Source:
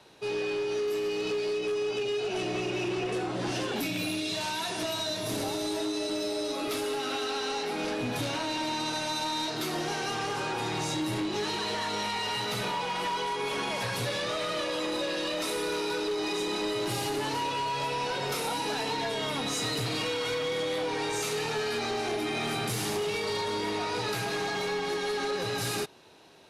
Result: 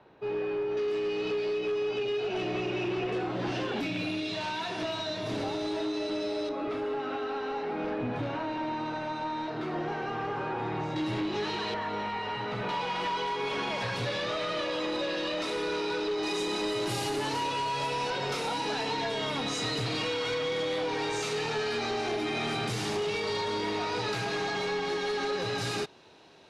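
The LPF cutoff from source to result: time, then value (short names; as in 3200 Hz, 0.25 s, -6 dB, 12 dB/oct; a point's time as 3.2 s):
1700 Hz
from 0.77 s 3500 Hz
from 6.49 s 1700 Hz
from 10.96 s 3800 Hz
from 11.74 s 2000 Hz
from 12.69 s 4600 Hz
from 16.23 s 10000 Hz
from 18.1 s 6100 Hz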